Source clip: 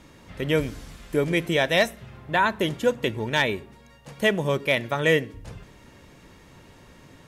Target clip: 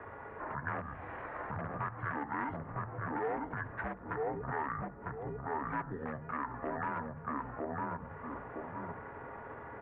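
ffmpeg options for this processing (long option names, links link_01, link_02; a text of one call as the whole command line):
ffmpeg -i in.wav -filter_complex "[0:a]asplit=2[link_01][link_02];[link_02]aeval=exprs='(mod(6.31*val(0)+1,2)-1)/6.31':channel_layout=same,volume=-4dB[link_03];[link_01][link_03]amix=inputs=2:normalize=0,asplit=2[link_04][link_05];[link_05]adelay=706,lowpass=frequency=1500:poles=1,volume=-4dB,asplit=2[link_06][link_07];[link_07]adelay=706,lowpass=frequency=1500:poles=1,volume=0.18,asplit=2[link_08][link_09];[link_09]adelay=706,lowpass=frequency=1500:poles=1,volume=0.18[link_10];[link_04][link_06][link_08][link_10]amix=inputs=4:normalize=0,asetrate=32667,aresample=44100,bandreject=frequency=50:width_type=h:width=6,bandreject=frequency=100:width_type=h:width=6,bandreject=frequency=150:width_type=h:width=6,bandreject=frequency=200:width_type=h:width=6,bandreject=frequency=250:width_type=h:width=6,bandreject=frequency=300:width_type=h:width=6,bandreject=frequency=350:width_type=h:width=6,bandreject=frequency=400:width_type=h:width=6,bandreject=frequency=450:width_type=h:width=6,acompressor=threshold=-33dB:ratio=4,highpass=frequency=270:width_type=q:width=0.5412,highpass=frequency=270:width_type=q:width=1.307,lowpass=frequency=2700:width_type=q:width=0.5176,lowpass=frequency=2700:width_type=q:width=0.7071,lowpass=frequency=2700:width_type=q:width=1.932,afreqshift=-93,alimiter=level_in=6.5dB:limit=-24dB:level=0:latency=1:release=104,volume=-6.5dB,equalizer=frequency=260:width=1.4:gain=-14,asetrate=32097,aresample=44100,atempo=1.37395,volume=6.5dB" out.wav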